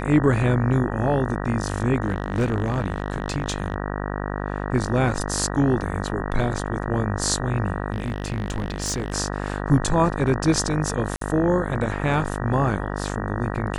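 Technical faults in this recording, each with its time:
mains buzz 50 Hz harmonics 38 −28 dBFS
0:02.07–0:03.76: clipping −17 dBFS
0:07.92–0:09.14: clipping −21 dBFS
0:11.16–0:11.21: drop-out 53 ms

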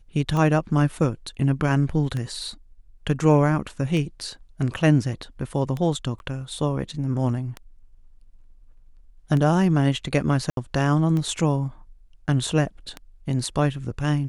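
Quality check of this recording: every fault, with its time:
scratch tick 33 1/3 rpm −17 dBFS
0:06.19–0:06.20: drop-out 11 ms
0:10.50–0:10.57: drop-out 72 ms

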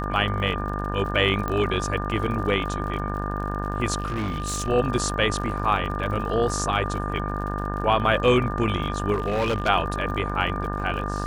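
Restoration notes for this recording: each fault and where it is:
mains buzz 50 Hz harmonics 36 −29 dBFS
surface crackle 53 per second −33 dBFS
whistle 1,200 Hz −32 dBFS
0:01.48: click −15 dBFS
0:04.00–0:04.69: clipping −23.5 dBFS
0:09.13–0:09.69: clipping −19.5 dBFS

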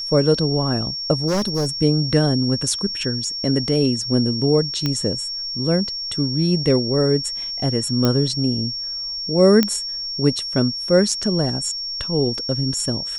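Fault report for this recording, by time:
whistle 5,500 Hz −25 dBFS
0:01.27–0:01.69: clipping −16.5 dBFS
0:04.86: click −8 dBFS
0:08.05: click −5 dBFS
0:09.63: click −3 dBFS

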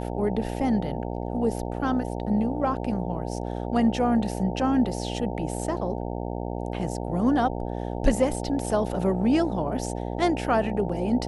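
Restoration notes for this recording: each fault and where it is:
mains buzz 60 Hz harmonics 15 −31 dBFS

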